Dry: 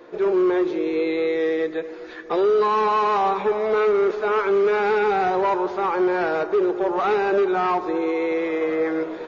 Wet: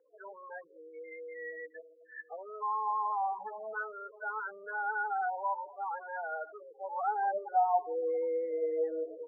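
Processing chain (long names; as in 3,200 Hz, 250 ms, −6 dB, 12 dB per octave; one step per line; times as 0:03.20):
spectral peaks only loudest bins 8
band-pass filter sweep 1,400 Hz → 420 Hz, 0:06.76–0:08.24
phaser with its sweep stopped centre 1,800 Hz, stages 8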